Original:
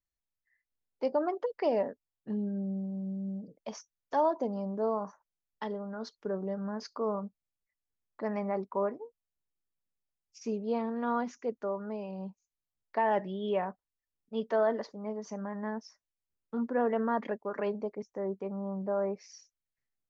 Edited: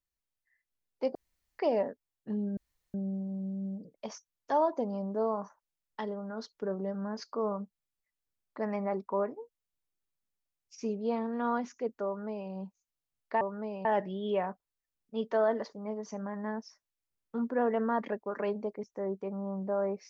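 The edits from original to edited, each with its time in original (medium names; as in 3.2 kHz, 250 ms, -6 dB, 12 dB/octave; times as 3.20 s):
1.15–1.59 s: room tone
2.57 s: insert room tone 0.37 s
11.69–12.13 s: copy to 13.04 s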